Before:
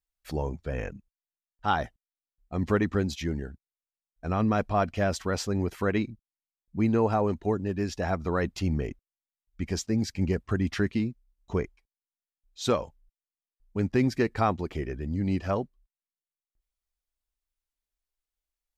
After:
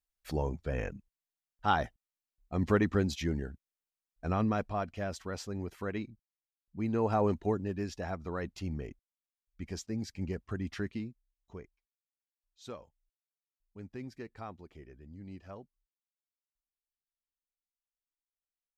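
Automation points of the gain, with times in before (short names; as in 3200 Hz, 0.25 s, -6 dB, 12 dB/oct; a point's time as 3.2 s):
4.26 s -2 dB
4.86 s -10 dB
6.78 s -10 dB
7.26 s -1.5 dB
8.17 s -9.5 dB
10.91 s -9.5 dB
11.64 s -19 dB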